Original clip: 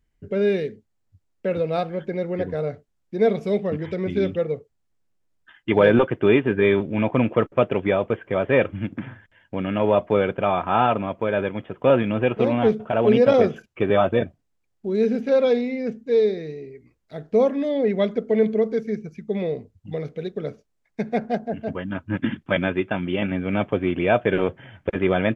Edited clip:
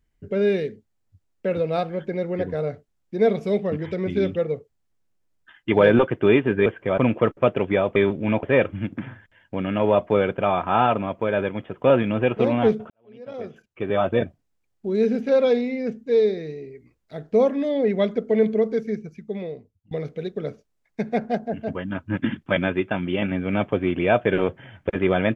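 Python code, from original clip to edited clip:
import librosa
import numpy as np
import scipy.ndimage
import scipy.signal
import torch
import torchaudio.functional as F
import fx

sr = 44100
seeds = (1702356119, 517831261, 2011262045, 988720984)

y = fx.edit(x, sr, fx.swap(start_s=6.66, length_s=0.47, other_s=8.11, other_length_s=0.32),
    fx.fade_in_span(start_s=12.9, length_s=1.31, curve='qua'),
    fx.fade_out_to(start_s=18.87, length_s=1.04, floor_db=-21.5), tone=tone)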